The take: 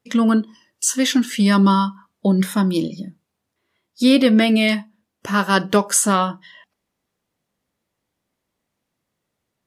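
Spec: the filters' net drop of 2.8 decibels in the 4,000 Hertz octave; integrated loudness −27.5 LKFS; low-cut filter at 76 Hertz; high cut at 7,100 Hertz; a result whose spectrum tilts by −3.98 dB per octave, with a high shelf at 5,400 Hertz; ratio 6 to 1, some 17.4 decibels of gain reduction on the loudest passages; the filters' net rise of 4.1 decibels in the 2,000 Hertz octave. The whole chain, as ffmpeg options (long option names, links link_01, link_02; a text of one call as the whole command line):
ffmpeg -i in.wav -af "highpass=76,lowpass=7100,equalizer=frequency=2000:width_type=o:gain=6.5,equalizer=frequency=4000:width_type=o:gain=-9,highshelf=frequency=5400:gain=6.5,acompressor=threshold=-30dB:ratio=6,volume=5.5dB" out.wav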